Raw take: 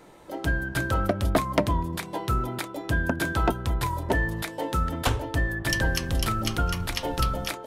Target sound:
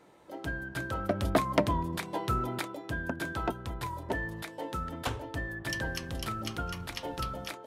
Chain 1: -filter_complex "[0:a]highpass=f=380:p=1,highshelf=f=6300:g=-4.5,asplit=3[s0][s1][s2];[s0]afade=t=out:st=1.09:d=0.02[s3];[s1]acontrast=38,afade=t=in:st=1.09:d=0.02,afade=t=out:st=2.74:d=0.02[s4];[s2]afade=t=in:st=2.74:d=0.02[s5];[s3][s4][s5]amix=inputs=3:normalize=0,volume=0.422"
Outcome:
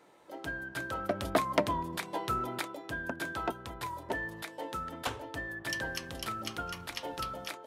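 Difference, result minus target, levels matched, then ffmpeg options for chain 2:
125 Hz band -6.5 dB
-filter_complex "[0:a]highpass=f=100:p=1,highshelf=f=6300:g=-4.5,asplit=3[s0][s1][s2];[s0]afade=t=out:st=1.09:d=0.02[s3];[s1]acontrast=38,afade=t=in:st=1.09:d=0.02,afade=t=out:st=2.74:d=0.02[s4];[s2]afade=t=in:st=2.74:d=0.02[s5];[s3][s4][s5]amix=inputs=3:normalize=0,volume=0.422"

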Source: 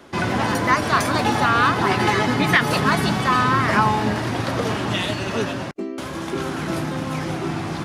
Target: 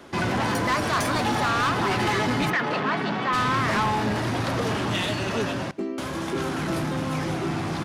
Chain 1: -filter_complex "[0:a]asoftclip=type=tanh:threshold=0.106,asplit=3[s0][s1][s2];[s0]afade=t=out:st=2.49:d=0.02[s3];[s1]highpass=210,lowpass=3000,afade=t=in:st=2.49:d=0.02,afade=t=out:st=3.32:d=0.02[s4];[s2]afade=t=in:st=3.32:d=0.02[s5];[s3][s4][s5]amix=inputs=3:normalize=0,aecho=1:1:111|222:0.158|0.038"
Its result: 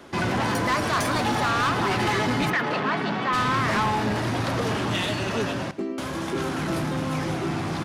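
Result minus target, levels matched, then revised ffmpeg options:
echo-to-direct +6.5 dB
-filter_complex "[0:a]asoftclip=type=tanh:threshold=0.106,asplit=3[s0][s1][s2];[s0]afade=t=out:st=2.49:d=0.02[s3];[s1]highpass=210,lowpass=3000,afade=t=in:st=2.49:d=0.02,afade=t=out:st=3.32:d=0.02[s4];[s2]afade=t=in:st=3.32:d=0.02[s5];[s3][s4][s5]amix=inputs=3:normalize=0,aecho=1:1:111|222:0.075|0.018"

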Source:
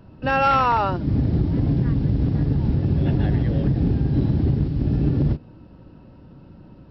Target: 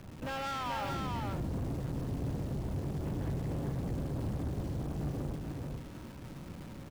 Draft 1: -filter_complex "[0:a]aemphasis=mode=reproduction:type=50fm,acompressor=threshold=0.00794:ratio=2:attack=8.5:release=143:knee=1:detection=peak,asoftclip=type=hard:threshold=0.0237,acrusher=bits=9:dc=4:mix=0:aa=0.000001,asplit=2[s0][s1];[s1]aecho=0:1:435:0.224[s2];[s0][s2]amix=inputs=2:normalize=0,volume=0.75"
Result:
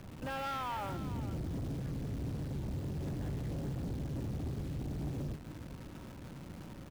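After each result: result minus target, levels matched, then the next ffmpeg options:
echo-to-direct -9.5 dB; compression: peak gain reduction +4 dB
-filter_complex "[0:a]aemphasis=mode=reproduction:type=50fm,acompressor=threshold=0.00794:ratio=2:attack=8.5:release=143:knee=1:detection=peak,asoftclip=type=hard:threshold=0.0237,acrusher=bits=9:dc=4:mix=0:aa=0.000001,asplit=2[s0][s1];[s1]aecho=0:1:435:0.668[s2];[s0][s2]amix=inputs=2:normalize=0,volume=0.75"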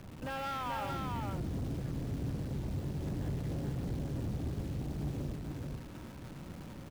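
compression: peak gain reduction +4 dB
-filter_complex "[0:a]aemphasis=mode=reproduction:type=50fm,acompressor=threshold=0.02:ratio=2:attack=8.5:release=143:knee=1:detection=peak,asoftclip=type=hard:threshold=0.0237,acrusher=bits=9:dc=4:mix=0:aa=0.000001,asplit=2[s0][s1];[s1]aecho=0:1:435:0.668[s2];[s0][s2]amix=inputs=2:normalize=0,volume=0.75"

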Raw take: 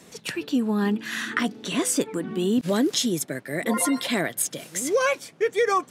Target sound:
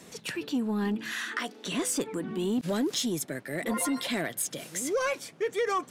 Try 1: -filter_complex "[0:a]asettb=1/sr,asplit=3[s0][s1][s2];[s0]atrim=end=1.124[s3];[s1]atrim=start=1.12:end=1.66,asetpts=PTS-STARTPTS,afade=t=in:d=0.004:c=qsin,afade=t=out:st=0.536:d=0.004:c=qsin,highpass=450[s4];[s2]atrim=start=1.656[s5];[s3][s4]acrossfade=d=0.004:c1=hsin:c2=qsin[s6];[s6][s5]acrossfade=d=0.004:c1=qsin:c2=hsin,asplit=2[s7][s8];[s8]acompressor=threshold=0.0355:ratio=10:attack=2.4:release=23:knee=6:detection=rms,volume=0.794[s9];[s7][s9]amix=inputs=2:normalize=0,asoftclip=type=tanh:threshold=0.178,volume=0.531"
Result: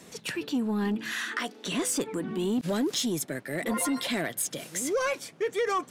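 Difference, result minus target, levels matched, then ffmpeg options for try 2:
compression: peak gain reduction -7 dB
-filter_complex "[0:a]asettb=1/sr,asplit=3[s0][s1][s2];[s0]atrim=end=1.124[s3];[s1]atrim=start=1.12:end=1.66,asetpts=PTS-STARTPTS,afade=t=in:d=0.004:c=qsin,afade=t=out:st=0.536:d=0.004:c=qsin,highpass=450[s4];[s2]atrim=start=1.656[s5];[s3][s4]acrossfade=d=0.004:c1=hsin:c2=qsin[s6];[s6][s5]acrossfade=d=0.004:c1=qsin:c2=hsin,asplit=2[s7][s8];[s8]acompressor=threshold=0.0141:ratio=10:attack=2.4:release=23:knee=6:detection=rms,volume=0.794[s9];[s7][s9]amix=inputs=2:normalize=0,asoftclip=type=tanh:threshold=0.178,volume=0.531"

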